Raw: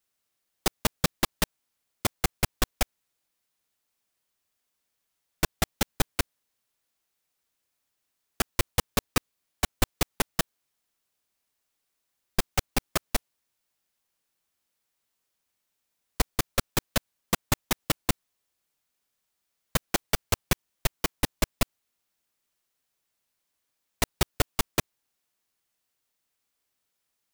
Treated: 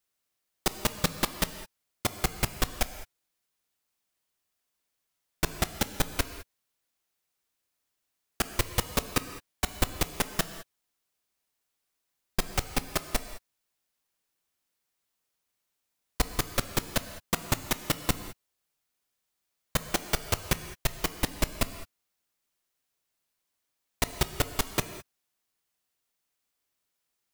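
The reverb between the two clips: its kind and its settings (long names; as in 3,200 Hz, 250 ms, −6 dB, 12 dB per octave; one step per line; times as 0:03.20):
reverb whose tail is shaped and stops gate 230 ms flat, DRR 10 dB
level −2 dB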